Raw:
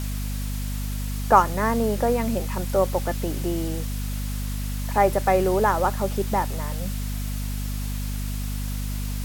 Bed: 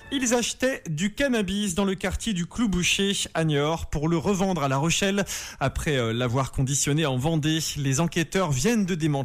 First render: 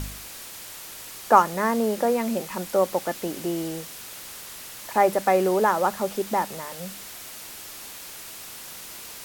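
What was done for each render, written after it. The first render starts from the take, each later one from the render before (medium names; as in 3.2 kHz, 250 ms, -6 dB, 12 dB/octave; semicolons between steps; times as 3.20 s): de-hum 50 Hz, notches 5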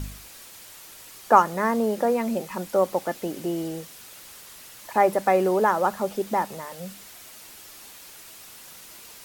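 noise reduction 6 dB, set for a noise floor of -40 dBFS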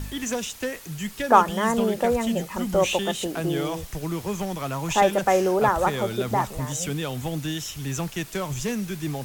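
add bed -5.5 dB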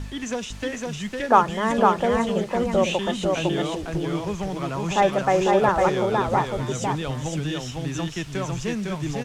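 distance through air 74 m; delay 505 ms -3 dB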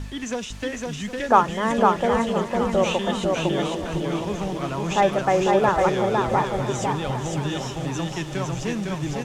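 shuffle delay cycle 1014 ms, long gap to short 3:1, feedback 45%, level -13 dB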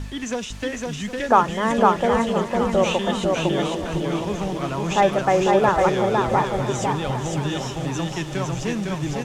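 trim +1.5 dB; peak limiter -3 dBFS, peak gain reduction 2 dB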